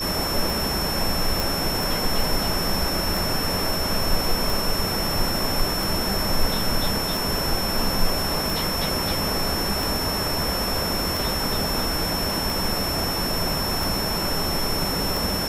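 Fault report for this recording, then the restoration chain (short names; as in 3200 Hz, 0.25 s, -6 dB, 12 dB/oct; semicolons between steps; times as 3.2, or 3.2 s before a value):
tick 45 rpm
tone 5400 Hz -27 dBFS
1.4 pop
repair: de-click; notch 5400 Hz, Q 30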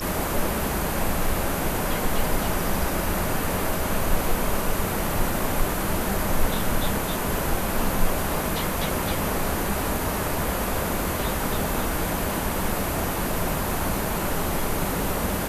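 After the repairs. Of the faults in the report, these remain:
none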